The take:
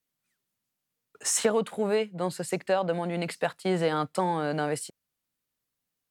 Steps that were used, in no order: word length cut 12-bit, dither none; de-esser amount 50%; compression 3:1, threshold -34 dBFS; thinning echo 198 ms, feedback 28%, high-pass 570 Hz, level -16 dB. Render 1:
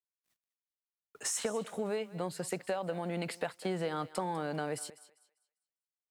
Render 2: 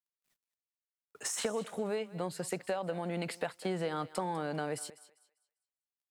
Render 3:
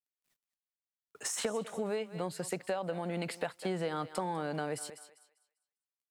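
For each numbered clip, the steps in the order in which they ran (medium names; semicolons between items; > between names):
compression > de-esser > word length cut > thinning echo; word length cut > de-esser > compression > thinning echo; word length cut > thinning echo > de-esser > compression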